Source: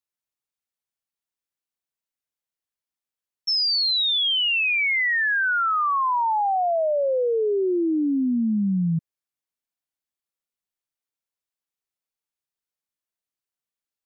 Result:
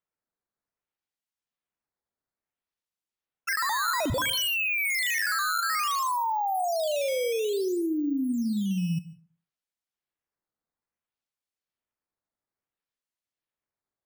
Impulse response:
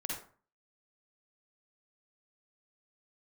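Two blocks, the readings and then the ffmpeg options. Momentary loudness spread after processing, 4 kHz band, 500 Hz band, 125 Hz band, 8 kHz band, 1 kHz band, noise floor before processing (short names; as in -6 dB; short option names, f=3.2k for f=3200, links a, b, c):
4 LU, -9.5 dB, -5.5 dB, -4.5 dB, n/a, -4.5 dB, under -85 dBFS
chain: -filter_complex "[0:a]acrusher=samples=9:mix=1:aa=0.000001:lfo=1:lforange=14.4:lforate=0.59,asplit=2[a][b];[1:a]atrim=start_sample=2205,adelay=71[c];[b][c]afir=irnorm=-1:irlink=0,volume=-15.5dB[d];[a][d]amix=inputs=2:normalize=0,volume=-5.5dB"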